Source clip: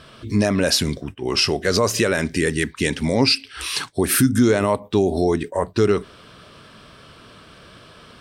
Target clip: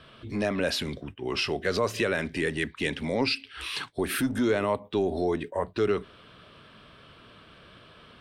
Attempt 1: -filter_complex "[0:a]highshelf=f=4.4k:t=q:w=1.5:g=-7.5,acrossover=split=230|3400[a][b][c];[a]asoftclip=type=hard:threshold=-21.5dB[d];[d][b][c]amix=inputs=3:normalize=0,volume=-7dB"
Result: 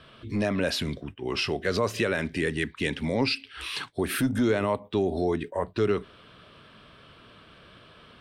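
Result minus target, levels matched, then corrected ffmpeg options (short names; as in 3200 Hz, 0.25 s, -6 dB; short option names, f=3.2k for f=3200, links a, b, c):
hard clip: distortion -7 dB
-filter_complex "[0:a]highshelf=f=4.4k:t=q:w=1.5:g=-7.5,acrossover=split=230|3400[a][b][c];[a]asoftclip=type=hard:threshold=-29.5dB[d];[d][b][c]amix=inputs=3:normalize=0,volume=-7dB"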